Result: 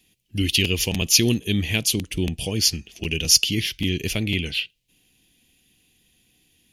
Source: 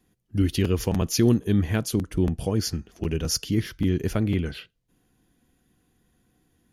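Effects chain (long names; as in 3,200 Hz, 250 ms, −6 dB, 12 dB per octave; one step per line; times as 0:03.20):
high shelf with overshoot 1,900 Hz +11.5 dB, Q 3
level −1.5 dB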